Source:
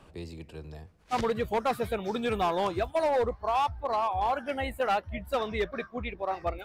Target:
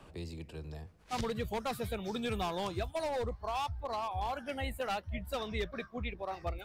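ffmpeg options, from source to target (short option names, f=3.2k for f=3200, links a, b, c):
-filter_complex "[0:a]acrossover=split=190|3000[a][b][c];[b]acompressor=threshold=-50dB:ratio=1.5[d];[a][d][c]amix=inputs=3:normalize=0"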